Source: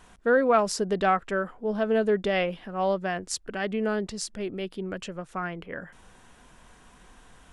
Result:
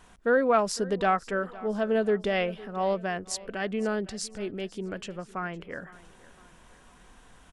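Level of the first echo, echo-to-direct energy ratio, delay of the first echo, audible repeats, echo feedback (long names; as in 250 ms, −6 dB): −20.0 dB, −19.0 dB, 508 ms, 3, 45%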